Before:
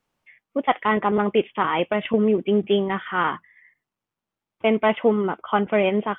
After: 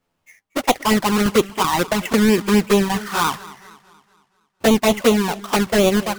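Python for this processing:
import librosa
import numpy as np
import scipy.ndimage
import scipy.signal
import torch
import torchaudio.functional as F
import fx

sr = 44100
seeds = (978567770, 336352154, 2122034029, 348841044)

y = fx.halfwave_hold(x, sr)
y = fx.env_flanger(y, sr, rest_ms=11.6, full_db=-11.0)
y = fx.echo_warbled(y, sr, ms=233, feedback_pct=46, rate_hz=2.8, cents=106, wet_db=-19.0)
y = F.gain(torch.from_numpy(y), 2.0).numpy()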